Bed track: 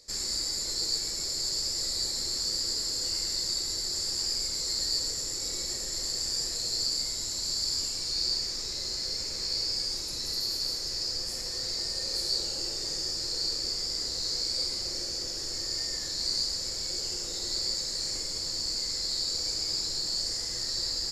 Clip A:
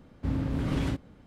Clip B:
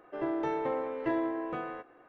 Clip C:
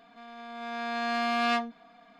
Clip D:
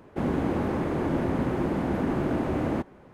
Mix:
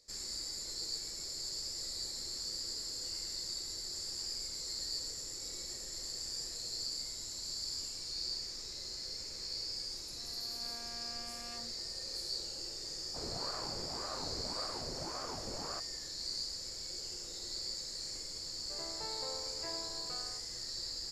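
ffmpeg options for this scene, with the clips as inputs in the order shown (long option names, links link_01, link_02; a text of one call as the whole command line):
ffmpeg -i bed.wav -i cue0.wav -i cue1.wav -i cue2.wav -i cue3.wav -filter_complex "[0:a]volume=-10dB[link_01];[3:a]alimiter=level_in=3dB:limit=-24dB:level=0:latency=1:release=71,volume=-3dB[link_02];[4:a]aeval=exprs='val(0)*sin(2*PI*550*n/s+550*0.7/1.8*sin(2*PI*1.8*n/s))':channel_layout=same[link_03];[2:a]equalizer=frequency=300:width_type=o:width=0.54:gain=-14.5[link_04];[link_02]atrim=end=2.19,asetpts=PTS-STARTPTS,volume=-16.5dB,afade=type=in:duration=0.004:curve=hsin,afade=type=out:start_time=2.186:duration=0.004:curve=hsin,adelay=10000[link_05];[link_03]atrim=end=3.13,asetpts=PTS-STARTPTS,volume=-15dB,afade=type=in:duration=0.004:curve=hsin,afade=type=out:start_time=3.126:duration=0.004:curve=hsin,adelay=12980[link_06];[link_04]atrim=end=2.08,asetpts=PTS-STARTPTS,volume=-12dB,afade=type=in:duration=0.004:curve=hsin,afade=type=out:start_time=2.076:duration=0.004:curve=hsin,adelay=18570[link_07];[link_01][link_05][link_06][link_07]amix=inputs=4:normalize=0" out.wav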